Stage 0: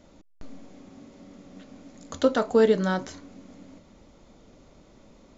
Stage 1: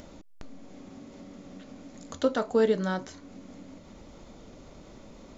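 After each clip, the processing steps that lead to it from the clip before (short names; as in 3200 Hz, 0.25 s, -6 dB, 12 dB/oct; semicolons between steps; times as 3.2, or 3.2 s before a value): upward compressor, threshold -34 dBFS; gain -4 dB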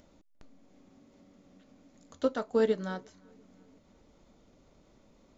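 darkening echo 0.349 s, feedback 56%, low-pass 3500 Hz, level -22 dB; upward expander 1.5:1, over -41 dBFS; gain -2.5 dB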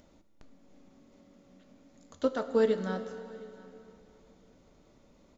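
echo 0.711 s -24 dB; plate-style reverb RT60 3.1 s, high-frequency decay 0.9×, DRR 9 dB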